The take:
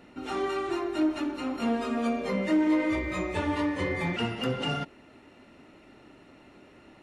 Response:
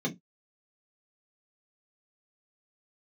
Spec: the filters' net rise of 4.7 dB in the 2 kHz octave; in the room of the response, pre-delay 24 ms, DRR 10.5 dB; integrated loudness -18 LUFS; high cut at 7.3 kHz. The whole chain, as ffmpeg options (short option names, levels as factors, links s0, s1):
-filter_complex "[0:a]lowpass=7300,equalizer=f=2000:t=o:g=5.5,asplit=2[s0][s1];[1:a]atrim=start_sample=2205,adelay=24[s2];[s1][s2]afir=irnorm=-1:irlink=0,volume=0.15[s3];[s0][s3]amix=inputs=2:normalize=0,volume=2.82"